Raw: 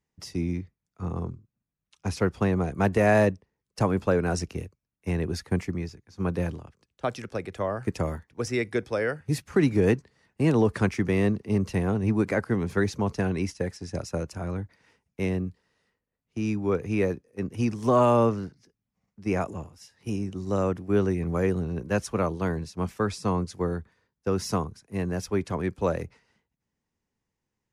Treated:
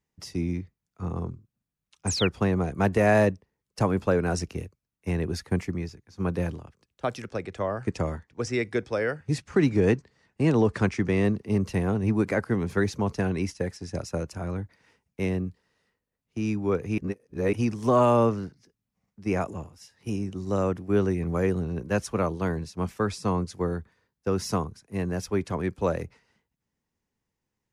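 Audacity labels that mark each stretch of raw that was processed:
2.070000	2.280000	painted sound fall 2.2–9.1 kHz -30 dBFS
7.280000	11.250000	low-pass 8.7 kHz 24 dB/octave
16.980000	17.530000	reverse

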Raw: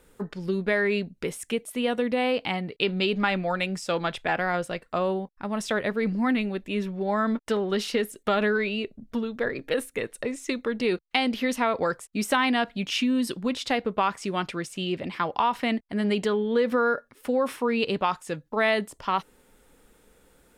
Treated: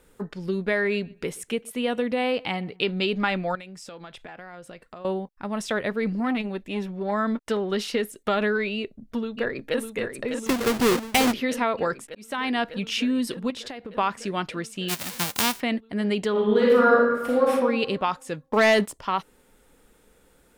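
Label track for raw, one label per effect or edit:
0.700000	2.810000	filtered feedback delay 125 ms, feedback 25%, low-pass 3 kHz, level -24 dB
3.550000	5.050000	compression 8:1, threshold -38 dBFS
6.200000	7.120000	transformer saturation saturates under 450 Hz
8.770000	9.790000	echo throw 600 ms, feedback 80%, level -6.5 dB
10.460000	11.330000	square wave that keeps the level
12.150000	12.620000	fade in
13.500000	13.950000	compression 12:1, threshold -32 dBFS
14.880000	15.590000	formants flattened exponent 0.1
16.310000	17.500000	reverb throw, RT60 1.2 s, DRR -5 dB
18.460000	18.920000	waveshaping leveller passes 2

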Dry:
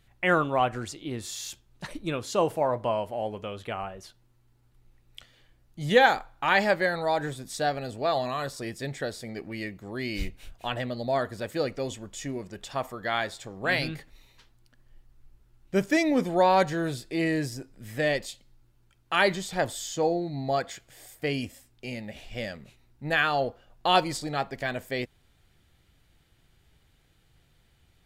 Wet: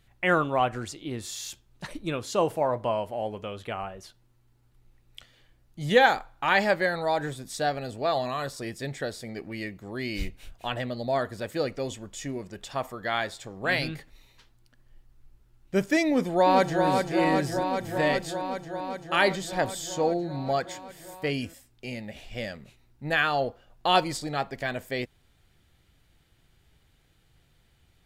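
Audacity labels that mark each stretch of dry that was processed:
16.070000	16.850000	echo throw 390 ms, feedback 80%, level -4.5 dB

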